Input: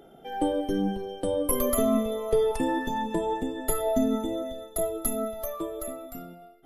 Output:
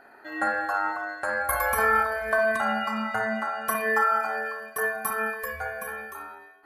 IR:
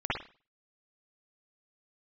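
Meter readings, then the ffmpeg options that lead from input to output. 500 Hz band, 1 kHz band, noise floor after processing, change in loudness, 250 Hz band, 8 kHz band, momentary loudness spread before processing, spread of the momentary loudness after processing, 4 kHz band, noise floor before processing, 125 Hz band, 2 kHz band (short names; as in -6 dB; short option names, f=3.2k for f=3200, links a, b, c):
-3.0 dB, +7.0 dB, -52 dBFS, +2.0 dB, -9.5 dB, -4.5 dB, 11 LU, 12 LU, -1.5 dB, -51 dBFS, -7.0 dB, +18.0 dB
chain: -filter_complex "[0:a]aeval=exprs='val(0)*sin(2*PI*1100*n/s)':c=same,asplit=2[a][b];[b]highshelf=f=2.4k:g=10.5[c];[1:a]atrim=start_sample=2205,lowpass=2.4k[d];[c][d]afir=irnorm=-1:irlink=0,volume=-12.5dB[e];[a][e]amix=inputs=2:normalize=0"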